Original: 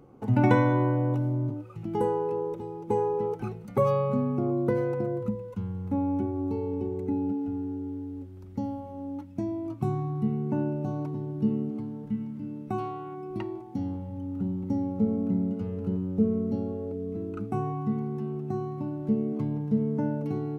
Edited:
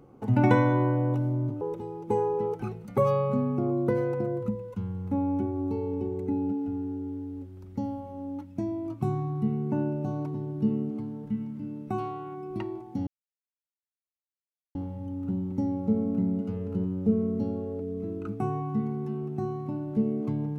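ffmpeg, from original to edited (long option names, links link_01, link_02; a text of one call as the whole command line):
ffmpeg -i in.wav -filter_complex "[0:a]asplit=3[link_01][link_02][link_03];[link_01]atrim=end=1.612[link_04];[link_02]atrim=start=2.408:end=13.87,asetpts=PTS-STARTPTS,afade=type=out:start_time=11.458:duration=0.004:curve=hsin,apad=pad_dur=1.68[link_05];[link_03]atrim=start=13.87,asetpts=PTS-STARTPTS,afade=type=in:duration=0.004:curve=hsin[link_06];[link_05][link_06]concat=n=2:v=0:a=1[link_07];[link_04][link_07]acrossfade=duration=0.004:curve1=hsin:curve2=hsin" out.wav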